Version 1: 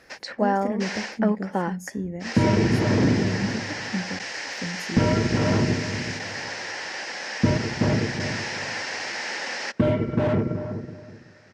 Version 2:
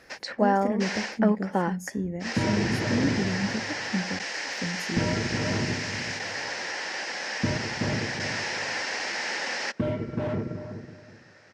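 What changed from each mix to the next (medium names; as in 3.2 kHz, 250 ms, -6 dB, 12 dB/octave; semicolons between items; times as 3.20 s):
second sound -7.0 dB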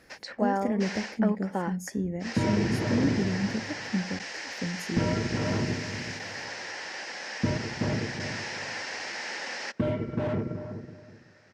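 first sound -5.0 dB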